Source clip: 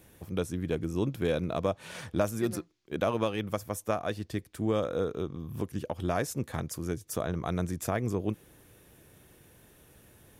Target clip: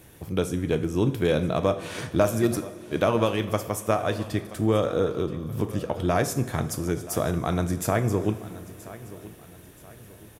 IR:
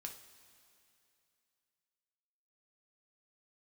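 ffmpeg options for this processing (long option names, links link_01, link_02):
-filter_complex "[0:a]aecho=1:1:977|1954|2931:0.133|0.0507|0.0193,asplit=2[link_01][link_02];[1:a]atrim=start_sample=2205,asetrate=38367,aresample=44100[link_03];[link_02][link_03]afir=irnorm=-1:irlink=0,volume=5dB[link_04];[link_01][link_04]amix=inputs=2:normalize=0"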